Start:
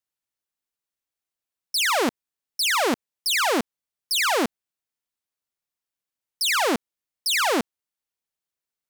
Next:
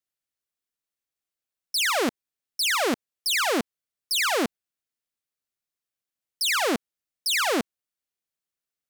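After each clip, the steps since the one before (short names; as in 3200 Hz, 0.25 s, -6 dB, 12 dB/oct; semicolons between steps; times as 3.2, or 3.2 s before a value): bell 920 Hz -5.5 dB 0.34 oct; gain -1.5 dB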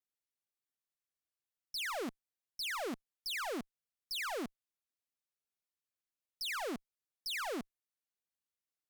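tube stage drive 29 dB, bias 0.2; gain -7.5 dB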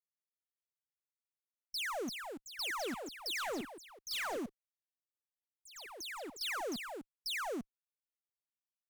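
per-bin expansion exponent 1.5; echoes that change speed 0.614 s, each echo +3 st, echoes 3, each echo -6 dB; hard clip -36 dBFS, distortion -22 dB; gain +1.5 dB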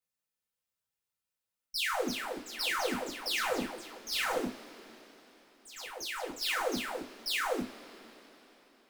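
reverb, pre-delay 3 ms, DRR -5 dB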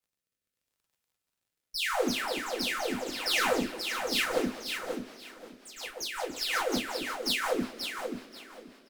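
crackle 53/s -66 dBFS; rotary speaker horn 0.8 Hz, later 5.5 Hz, at 3.42; on a send: feedback echo 0.533 s, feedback 21%, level -6.5 dB; on the sum: gain +5 dB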